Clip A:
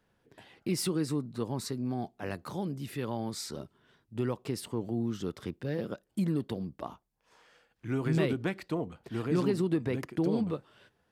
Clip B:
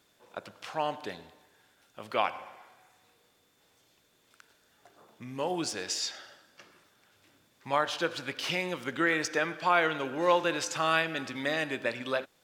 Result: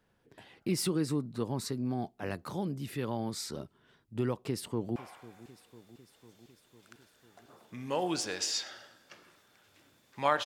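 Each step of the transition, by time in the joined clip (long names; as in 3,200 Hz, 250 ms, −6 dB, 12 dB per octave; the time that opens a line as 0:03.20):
clip A
0:04.38–0:04.96: delay throw 500 ms, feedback 70%, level −18 dB
0:04.96: continue with clip B from 0:02.44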